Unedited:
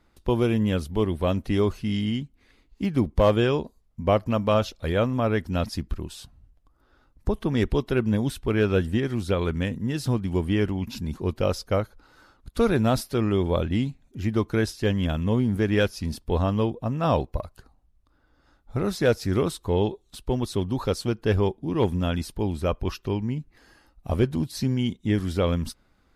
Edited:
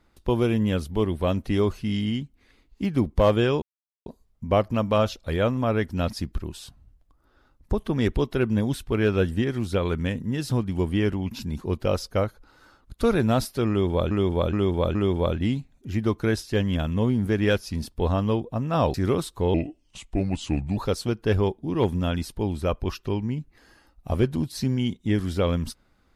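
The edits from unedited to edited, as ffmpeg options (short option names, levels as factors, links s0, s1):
-filter_complex "[0:a]asplit=8[s0][s1][s2][s3][s4][s5][s6][s7];[s0]atrim=end=3.62,asetpts=PTS-STARTPTS,afade=t=out:st=3.616:d=0.004:c=hsin,apad=pad_dur=0.44[s8];[s1]atrim=start=3.62:end=13.672,asetpts=PTS-STARTPTS,afade=t=in:d=0.004:c=hsin[s9];[s2]atrim=start=13.248:end=13.672[s10];[s3]atrim=start=13.248:end=13.672[s11];[s4]atrim=start=13.248:end=17.242[s12];[s5]atrim=start=19.218:end=19.824[s13];[s6]atrim=start=19.82:end=20.77,asetpts=PTS-STARTPTS,asetrate=33957,aresample=44100,atrim=end_sample=54409,asetpts=PTS-STARTPTS[s14];[s7]atrim=start=20.766[s15];[s8][s9]concat=n=2:v=0:a=1[s16];[s16][s10]acrossfade=d=0.004:c1=hsin:c2=hsin[s17];[s17][s11]acrossfade=d=0.004:c1=hsin:c2=hsin[s18];[s18][s12]acrossfade=d=0.004:c1=hsin:c2=hsin[s19];[s19][s13]acrossfade=d=0.004:c1=hsin:c2=hsin[s20];[s20][s14]acrossfade=d=0.004:c1=hsin:c2=hsin[s21];[s21][s15]acrossfade=d=0.004:c1=hsin:c2=hsin"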